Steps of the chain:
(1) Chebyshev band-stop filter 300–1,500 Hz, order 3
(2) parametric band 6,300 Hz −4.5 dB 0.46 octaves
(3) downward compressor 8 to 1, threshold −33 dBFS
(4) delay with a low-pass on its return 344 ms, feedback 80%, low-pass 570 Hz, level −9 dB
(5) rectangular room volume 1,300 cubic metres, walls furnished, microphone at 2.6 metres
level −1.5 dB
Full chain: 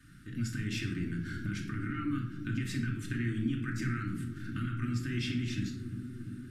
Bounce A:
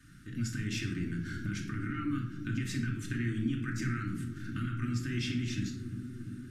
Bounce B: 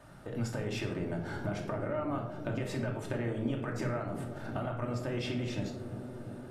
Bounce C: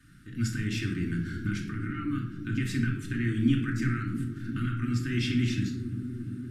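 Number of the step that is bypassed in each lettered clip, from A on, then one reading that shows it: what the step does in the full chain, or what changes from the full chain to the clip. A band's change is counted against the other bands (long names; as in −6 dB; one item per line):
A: 2, 8 kHz band +3.0 dB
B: 1, 500 Hz band +15.5 dB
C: 3, average gain reduction 2.5 dB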